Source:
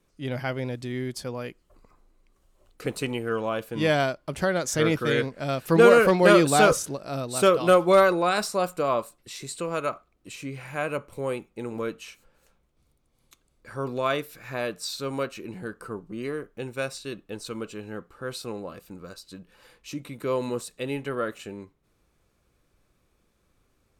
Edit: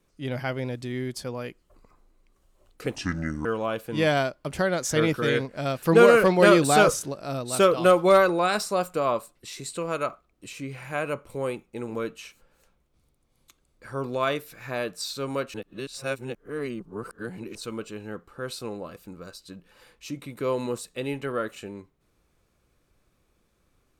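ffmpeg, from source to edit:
-filter_complex "[0:a]asplit=5[s0][s1][s2][s3][s4];[s0]atrim=end=2.954[s5];[s1]atrim=start=2.95:end=3.28,asetpts=PTS-STARTPTS,asetrate=29106,aresample=44100[s6];[s2]atrim=start=3.276:end=15.372[s7];[s3]atrim=start=15.368:end=17.382,asetpts=PTS-STARTPTS,areverse[s8];[s4]atrim=start=17.378[s9];[s5][s6]acrossfade=d=0.004:c1=hsin:c2=hsin[s10];[s10][s7]acrossfade=d=0.004:c1=hsin:c2=hsin[s11];[s11][s8]acrossfade=d=0.004:c1=hsin:c2=hsin[s12];[s12][s9]acrossfade=d=0.004:c1=hsin:c2=hsin"

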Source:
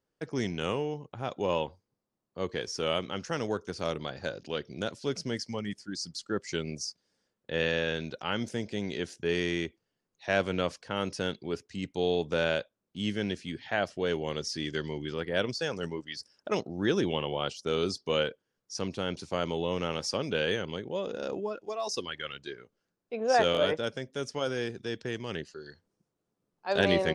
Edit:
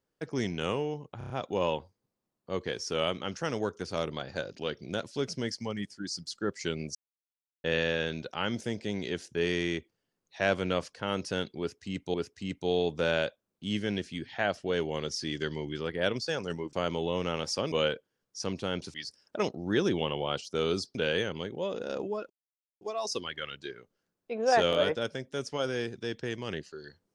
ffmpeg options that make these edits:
-filter_complex "[0:a]asplit=13[s0][s1][s2][s3][s4][s5][s6][s7][s8][s9][s10][s11][s12];[s0]atrim=end=1.212[s13];[s1]atrim=start=1.178:end=1.212[s14];[s2]atrim=start=1.178:end=1.212[s15];[s3]atrim=start=1.178:end=1.212[s16];[s4]atrim=start=1.178:end=6.83,asetpts=PTS-STARTPTS,afade=t=out:st=5.648:d=0.004:c=hsin[s17];[s5]atrim=start=6.83:end=7.52,asetpts=PTS-STARTPTS,volume=0[s18];[s6]atrim=start=7.52:end=12.022,asetpts=PTS-STARTPTS,afade=t=in:d=0.004:c=hsin[s19];[s7]atrim=start=11.468:end=16.062[s20];[s8]atrim=start=19.288:end=20.282[s21];[s9]atrim=start=18.068:end=19.292[s22];[s10]atrim=start=16.058:end=18.072[s23];[s11]atrim=start=20.278:end=21.63,asetpts=PTS-STARTPTS,afade=t=out:st=1.348:d=0.004:c=hsin,apad=pad_dur=0.51[s24];[s12]atrim=start=21.63,asetpts=PTS-STARTPTS,afade=t=in:d=0.004:c=hsin[s25];[s13][s14]acrossfade=d=0.004:c1=hsin:c2=hsin[s26];[s26][s15]acrossfade=d=0.004:c1=hsin:c2=hsin[s27];[s27][s16]acrossfade=d=0.004:c1=hsin:c2=hsin[s28];[s17][s18][s19]concat=n=3:v=0:a=1[s29];[s28][s29]acrossfade=d=0.004:c1=hsin:c2=hsin[s30];[s30][s20]acrossfade=d=0.004:c1=hsin:c2=hsin[s31];[s31][s21]acrossfade=d=0.004:c1=hsin:c2=hsin[s32];[s32][s22]acrossfade=d=0.004:c1=hsin:c2=hsin[s33];[s33][s23]acrossfade=d=0.004:c1=hsin:c2=hsin[s34];[s24][s25]concat=n=2:v=0:a=1[s35];[s34][s35]acrossfade=d=0.004:c1=hsin:c2=hsin"

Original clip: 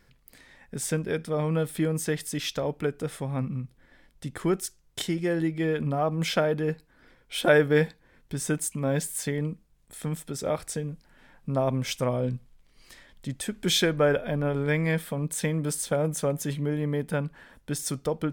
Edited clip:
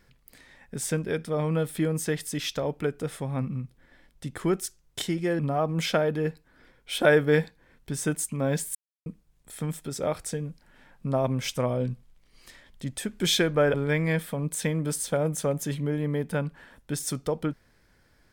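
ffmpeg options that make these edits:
-filter_complex "[0:a]asplit=5[s0][s1][s2][s3][s4];[s0]atrim=end=5.392[s5];[s1]atrim=start=5.818:end=9.18,asetpts=PTS-STARTPTS,afade=t=out:st=3.358:d=0.004:c=hsin[s6];[s2]atrim=start=9.18:end=9.49,asetpts=PTS-STARTPTS,volume=0[s7];[s3]atrim=start=9.49:end=14.172,asetpts=PTS-STARTPTS,afade=t=in:d=0.004:c=hsin[s8];[s4]atrim=start=14.528[s9];[s6][s7][s8]concat=n=3:v=0:a=1[s10];[s5][s10]acrossfade=d=0.004:c1=hsin:c2=hsin[s11];[s11][s9]acrossfade=d=0.004:c1=hsin:c2=hsin"

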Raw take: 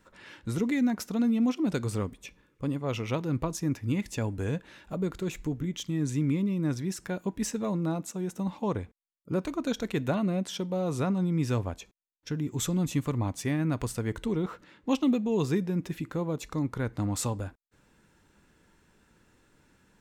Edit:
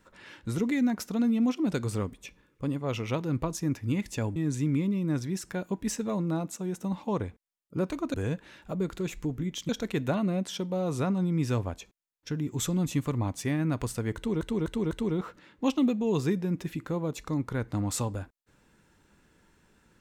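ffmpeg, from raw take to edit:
-filter_complex "[0:a]asplit=7[s0][s1][s2][s3][s4][s5][s6];[s0]atrim=end=4.362[s7];[s1]atrim=start=5.908:end=9.692[s8];[s2]atrim=start=4.358:end=5.912[s9];[s3]atrim=start=9.688:end=14.412[s10];[s4]atrim=start=14.158:end=14.412[s11];[s5]atrim=start=14.158:end=14.412[s12];[s6]atrim=start=14.158[s13];[s7][s8]acrossfade=d=0.004:c1=hsin:c2=hsin[s14];[s14][s9]acrossfade=d=0.004:c1=hsin:c2=hsin[s15];[s15][s10]acrossfade=d=0.004:c1=hsin:c2=hsin[s16];[s16][s11]acrossfade=d=0.004:c1=hsin:c2=hsin[s17];[s17][s12]acrossfade=d=0.004:c1=hsin:c2=hsin[s18];[s18][s13]acrossfade=d=0.004:c1=hsin:c2=hsin"

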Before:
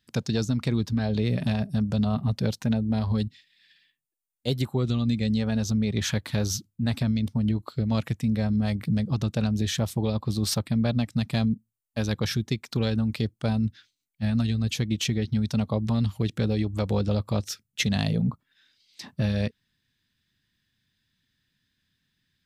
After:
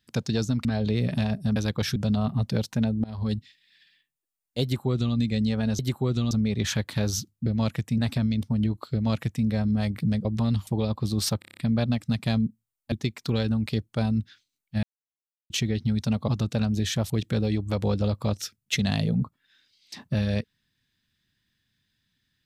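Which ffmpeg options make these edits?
-filter_complex "[0:a]asplit=22[s0][s1][s2][s3][s4][s5][s6][s7][s8][s9][s10][s11][s12][s13][s14][s15][s16][s17][s18][s19][s20][s21];[s0]atrim=end=0.652[s22];[s1]atrim=start=0.938:end=1.852[s23];[s2]atrim=start=11.988:end=12.392[s24];[s3]atrim=start=1.848:end=2.93,asetpts=PTS-STARTPTS,afade=t=out:st=1.078:d=0.004:c=hsin:silence=0.0749894[s25];[s4]atrim=start=2.93:end=5.682,asetpts=PTS-STARTPTS,afade=t=in:d=0.3:silence=0.0749894[s26];[s5]atrim=start=4.518:end=5.042[s27];[s6]atrim=start=5.678:end=6.832[s28];[s7]atrim=start=7.778:end=8.302[s29];[s8]atrim=start=6.828:end=9.102[s30];[s9]atrim=start=15.748:end=16.172[s31];[s10]atrim=start=9.918:end=10.672[s32];[s11]atrim=start=10.638:end=10.672[s33];[s12]atrim=start=10.638:end=10.672[s34];[s13]atrim=start=10.638:end=10.672[s35];[s14]atrim=start=10.638:end=10.672[s36];[s15]atrim=start=10.638:end=10.672[s37];[s16]atrim=start=10.638:end=11.992[s38];[s17]atrim=start=12.388:end=14.3,asetpts=PTS-STARTPTS,afade=t=out:st=1.908:d=0.004:c=hsin[s39];[s18]atrim=start=14.3:end=14.97,asetpts=PTS-STARTPTS,volume=0[s40];[s19]atrim=start=14.97:end=15.752,asetpts=PTS-STARTPTS,afade=t=in:d=0.004:c=hsin[s41];[s20]atrim=start=9.098:end=9.922[s42];[s21]atrim=start=16.168[s43];[s22][s23]acrossfade=d=0.004:c1=hsin:c2=hsin[s44];[s44][s24]acrossfade=d=0.004:c1=hsin:c2=hsin[s45];[s25][s26]concat=n=2:v=0:a=1[s46];[s45][s46]acrossfade=d=0.004:c1=hsin:c2=hsin[s47];[s47][s27]acrossfade=d=0.004:c1=hsin:c2=hsin[s48];[s48][s28]acrossfade=d=0.004:c1=hsin:c2=hsin[s49];[s49][s29]acrossfade=d=0.004:c1=hsin:c2=hsin[s50];[s50][s30]acrossfade=d=0.004:c1=hsin:c2=hsin[s51];[s51][s31]acrossfade=d=0.004:c1=hsin:c2=hsin[s52];[s52][s32]acrossfade=d=0.004:c1=hsin:c2=hsin[s53];[s53][s33]acrossfade=d=0.004:c1=hsin:c2=hsin[s54];[s54][s34]acrossfade=d=0.004:c1=hsin:c2=hsin[s55];[s55][s35]acrossfade=d=0.004:c1=hsin:c2=hsin[s56];[s56][s36]acrossfade=d=0.004:c1=hsin:c2=hsin[s57];[s57][s37]acrossfade=d=0.004:c1=hsin:c2=hsin[s58];[s58][s38]acrossfade=d=0.004:c1=hsin:c2=hsin[s59];[s39][s40][s41]concat=n=3:v=0:a=1[s60];[s59][s60]acrossfade=d=0.004:c1=hsin:c2=hsin[s61];[s61][s42]acrossfade=d=0.004:c1=hsin:c2=hsin[s62];[s62][s43]acrossfade=d=0.004:c1=hsin:c2=hsin"

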